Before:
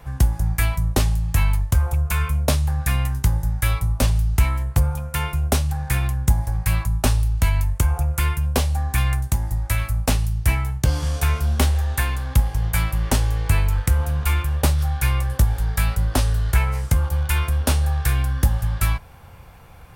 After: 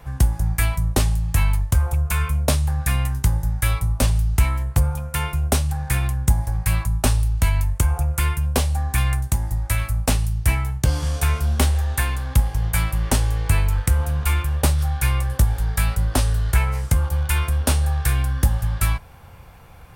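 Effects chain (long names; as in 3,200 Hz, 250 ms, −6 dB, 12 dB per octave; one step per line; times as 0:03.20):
dynamic equaliser 8,800 Hz, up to +4 dB, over −44 dBFS, Q 2.9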